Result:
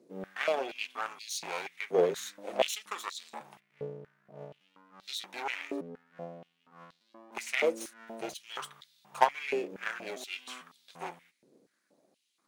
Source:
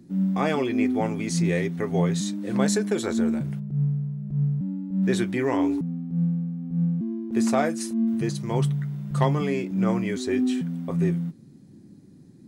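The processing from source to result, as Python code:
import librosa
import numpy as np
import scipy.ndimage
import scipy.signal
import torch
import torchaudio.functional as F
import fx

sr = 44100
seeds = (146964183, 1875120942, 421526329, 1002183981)

y = fx.lower_of_two(x, sr, delay_ms=0.31)
y = fx.rider(y, sr, range_db=10, speed_s=0.5)
y = fx.cheby_harmonics(y, sr, harmonics=(3,), levels_db=(-14,), full_scale_db=-8.5)
y = fx.filter_held_highpass(y, sr, hz=4.2, low_hz=460.0, high_hz=4000.0)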